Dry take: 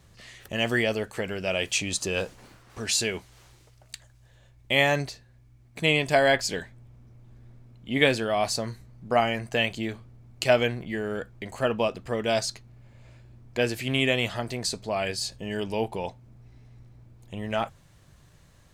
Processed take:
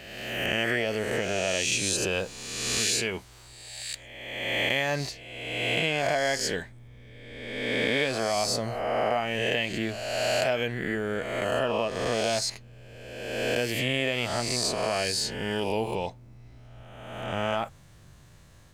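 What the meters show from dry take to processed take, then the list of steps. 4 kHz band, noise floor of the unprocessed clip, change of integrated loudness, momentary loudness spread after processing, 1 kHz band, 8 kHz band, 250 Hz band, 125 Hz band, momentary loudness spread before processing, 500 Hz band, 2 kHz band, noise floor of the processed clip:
+1.0 dB, -57 dBFS, -1.0 dB, 12 LU, -0.5 dB, +3.0 dB, -2.0 dB, -2.0 dB, 15 LU, -1.0 dB, -0.5 dB, -52 dBFS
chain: spectral swells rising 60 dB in 1.42 s; compressor 5:1, threshold -23 dBFS, peak gain reduction 10 dB

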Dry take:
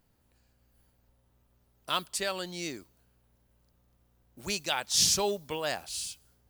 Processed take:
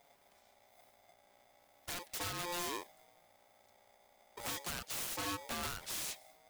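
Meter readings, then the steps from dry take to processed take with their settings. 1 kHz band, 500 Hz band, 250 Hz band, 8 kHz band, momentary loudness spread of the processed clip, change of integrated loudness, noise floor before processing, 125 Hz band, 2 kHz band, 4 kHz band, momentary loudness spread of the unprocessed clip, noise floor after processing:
-7.0 dB, -13.0 dB, -7.5 dB, -11.5 dB, 7 LU, -10.0 dB, -70 dBFS, -6.0 dB, -6.5 dB, -12.0 dB, 15 LU, -69 dBFS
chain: self-modulated delay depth 0.12 ms; compressor 16:1, threshold -37 dBFS, peak gain reduction 16.5 dB; wrapped overs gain 36.5 dB; envelope flanger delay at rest 8.2 ms, full sweep at -41.5 dBFS; polarity switched at an audio rate 700 Hz; gain +6 dB

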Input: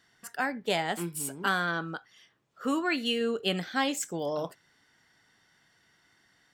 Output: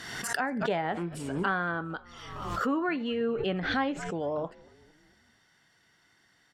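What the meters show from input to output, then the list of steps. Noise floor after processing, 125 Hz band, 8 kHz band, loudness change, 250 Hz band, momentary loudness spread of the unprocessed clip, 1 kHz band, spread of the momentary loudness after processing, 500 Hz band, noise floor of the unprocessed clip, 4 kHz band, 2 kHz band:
-66 dBFS, +2.5 dB, -6.0 dB, -0.5 dB, +1.0 dB, 9 LU, +1.0 dB, 9 LU, +1.0 dB, -67 dBFS, -7.0 dB, -1.0 dB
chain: treble ducked by the level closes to 1700 Hz, closed at -28 dBFS; frequency-shifting echo 0.228 s, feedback 56%, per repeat -92 Hz, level -24 dB; backwards sustainer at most 41 dB/s

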